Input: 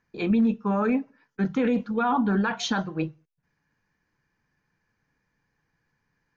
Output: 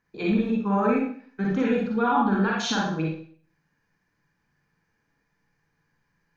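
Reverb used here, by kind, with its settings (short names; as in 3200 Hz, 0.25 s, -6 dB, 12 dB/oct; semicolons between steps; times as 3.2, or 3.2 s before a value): Schroeder reverb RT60 0.5 s, DRR -3 dB; gain -2.5 dB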